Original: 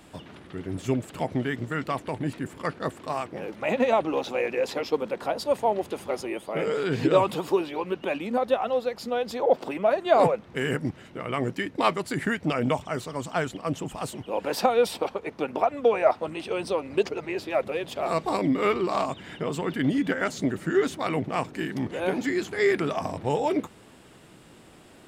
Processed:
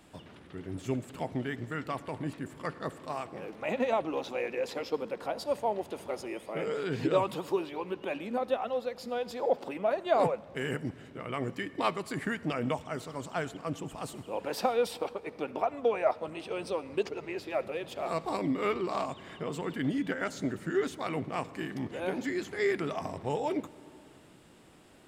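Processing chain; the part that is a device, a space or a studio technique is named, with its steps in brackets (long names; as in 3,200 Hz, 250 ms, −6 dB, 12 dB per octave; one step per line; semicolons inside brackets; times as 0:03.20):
compressed reverb return (on a send at −12 dB: convolution reverb RT60 1.6 s, pre-delay 57 ms + downward compressor, threshold −29 dBFS, peak gain reduction 13.5 dB)
on the sum: level −6.5 dB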